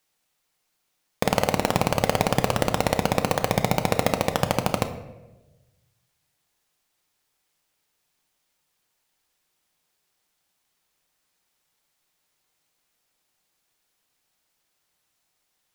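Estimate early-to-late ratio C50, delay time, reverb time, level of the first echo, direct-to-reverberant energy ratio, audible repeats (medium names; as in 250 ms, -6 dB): 11.0 dB, no echo, 1.1 s, no echo, 7.0 dB, no echo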